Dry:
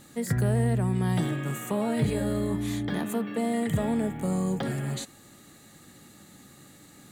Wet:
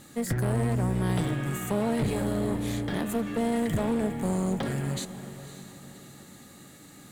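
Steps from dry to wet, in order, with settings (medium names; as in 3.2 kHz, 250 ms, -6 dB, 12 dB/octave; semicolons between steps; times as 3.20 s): one-sided clip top -32 dBFS; echo that smears into a reverb 565 ms, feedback 41%, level -13 dB; trim +1.5 dB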